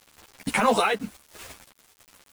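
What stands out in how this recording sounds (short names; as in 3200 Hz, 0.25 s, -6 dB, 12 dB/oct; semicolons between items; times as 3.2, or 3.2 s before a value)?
a quantiser's noise floor 8-bit, dither none; random-step tremolo; a shimmering, thickened sound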